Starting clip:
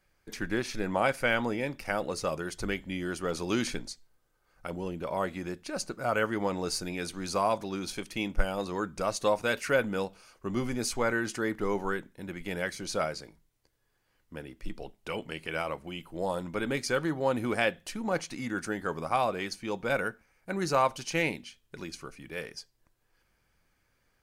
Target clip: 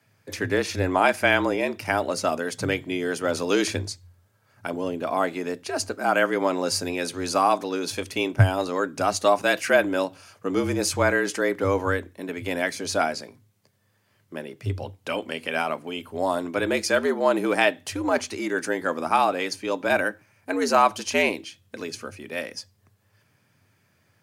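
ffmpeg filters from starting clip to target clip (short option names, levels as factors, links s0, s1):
-af "afreqshift=85,volume=2.24"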